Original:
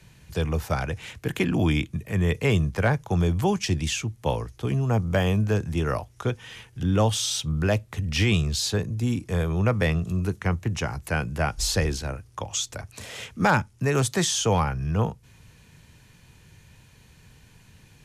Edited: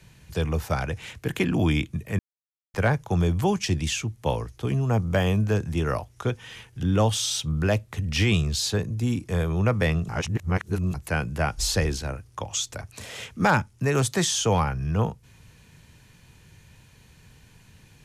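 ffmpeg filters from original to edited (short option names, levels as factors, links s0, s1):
-filter_complex "[0:a]asplit=5[s0][s1][s2][s3][s4];[s0]atrim=end=2.19,asetpts=PTS-STARTPTS,afade=t=out:st=2.186:d=0.004:c=hsin[s5];[s1]atrim=start=2.19:end=2.74,asetpts=PTS-STARTPTS,volume=0[s6];[s2]atrim=start=2.74:end=10.092,asetpts=PTS-STARTPTS,afade=t=in:d=0.004:c=hsin[s7];[s3]atrim=start=10.088:end=10.942,asetpts=PTS-STARTPTS,areverse[s8];[s4]atrim=start=10.938[s9];[s5][s6][s7]concat=n=3:v=0:a=1[s10];[s10][s8]acrossfade=d=0.004:c1=hsin:c2=hsin[s11];[s11][s9]acrossfade=d=0.004:c1=hsin:c2=hsin"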